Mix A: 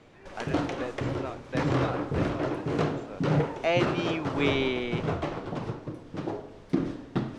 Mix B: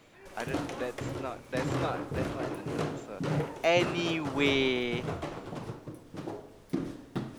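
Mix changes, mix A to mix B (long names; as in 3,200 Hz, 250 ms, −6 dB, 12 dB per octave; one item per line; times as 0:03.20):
background −6.0 dB
master: remove high-frequency loss of the air 96 metres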